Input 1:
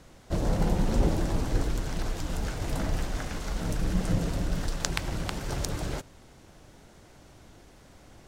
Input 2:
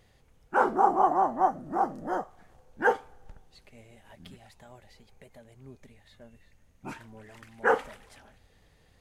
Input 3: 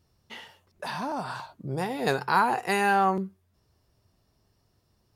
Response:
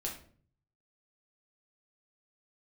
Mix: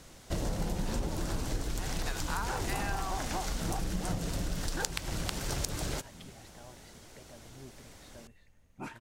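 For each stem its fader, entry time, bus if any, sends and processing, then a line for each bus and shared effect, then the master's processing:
-1.5 dB, 0.00 s, no send, treble shelf 3.1 kHz +9 dB
-2.0 dB, 1.95 s, no send, compression, threshold -31 dBFS, peak gain reduction 14.5 dB
-7.5 dB, 0.00 s, no send, high-pass 960 Hz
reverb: none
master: compression 6:1, threshold -29 dBFS, peak gain reduction 11.5 dB

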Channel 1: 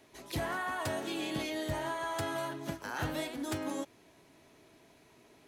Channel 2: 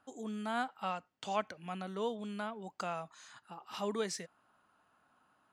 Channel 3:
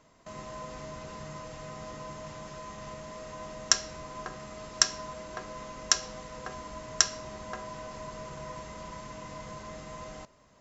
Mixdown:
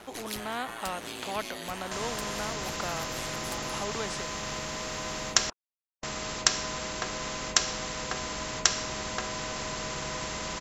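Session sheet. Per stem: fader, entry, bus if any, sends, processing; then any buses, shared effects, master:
-3.5 dB, 0.00 s, no send, compression, threshold -42 dBFS, peak gain reduction 11.5 dB; ring modulator 57 Hz
+3.0 dB, 0.00 s, no send, band-pass filter 600 Hz, Q 0.8
0.0 dB, 1.65 s, muted 5.50–6.03 s, no send, none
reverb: none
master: spectrum-flattening compressor 2:1

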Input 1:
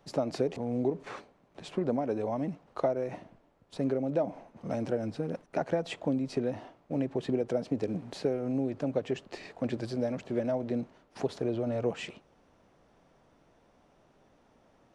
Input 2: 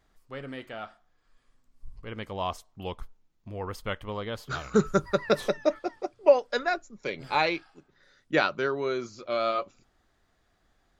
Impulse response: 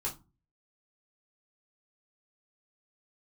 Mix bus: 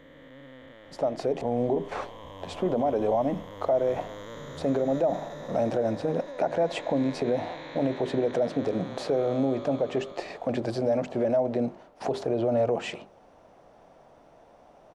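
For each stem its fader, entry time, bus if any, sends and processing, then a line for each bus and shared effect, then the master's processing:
-3.0 dB, 0.85 s, no send, peaking EQ 680 Hz +9.5 dB 1.2 oct; hum notches 50/100/150/200/250/300/350/400 Hz; level rider gain up to 7 dB
-1.0 dB, 0.00 s, no send, spectral blur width 1230 ms; rippled EQ curve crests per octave 1.1, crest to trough 12 dB; compression, threshold -36 dBFS, peak gain reduction 6.5 dB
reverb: none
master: peak limiter -16.5 dBFS, peak gain reduction 9.5 dB

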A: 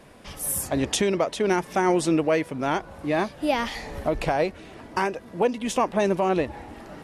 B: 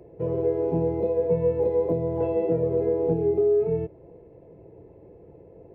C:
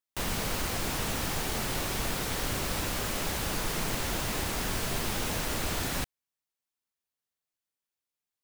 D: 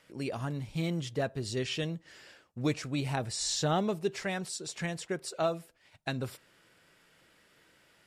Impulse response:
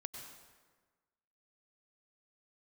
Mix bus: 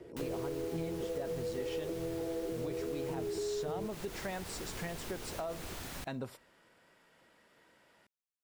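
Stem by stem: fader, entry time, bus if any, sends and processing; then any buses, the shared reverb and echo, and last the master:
mute
-7.0 dB, 0.00 s, bus A, no send, steep low-pass 930 Hz 96 dB/octave; peaking EQ 340 Hz +7 dB
-12.5 dB, 0.00 s, bus B, send -15 dB, none
-6.0 dB, 0.00 s, bus B, no send, peaking EQ 690 Hz +8 dB 1.9 oct; small resonant body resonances 230/960/1900 Hz, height 6 dB
bus A: 0.0 dB, peak limiter -23 dBFS, peak gain reduction 6.5 dB
bus B: 0.0 dB, peak limiter -24.5 dBFS, peak gain reduction 7.5 dB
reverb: on, RT60 1.4 s, pre-delay 88 ms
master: compression 3:1, threshold -37 dBFS, peak gain reduction 10 dB

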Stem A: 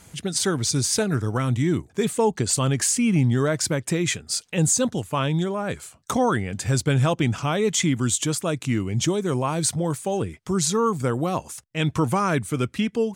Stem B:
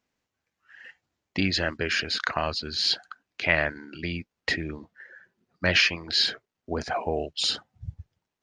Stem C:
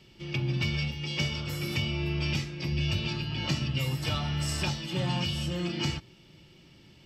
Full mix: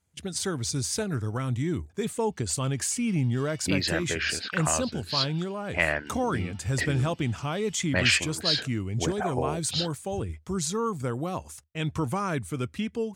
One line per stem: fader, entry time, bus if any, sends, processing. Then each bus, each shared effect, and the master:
-7.0 dB, 0.00 s, no send, peaking EQ 77 Hz +12.5 dB 0.44 oct
-2.0 dB, 2.30 s, no send, level-controlled noise filter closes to 360 Hz, open at -19.5 dBFS
-18.0 dB, 2.30 s, no send, elliptic high-pass 730 Hz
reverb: none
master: gate with hold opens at -34 dBFS

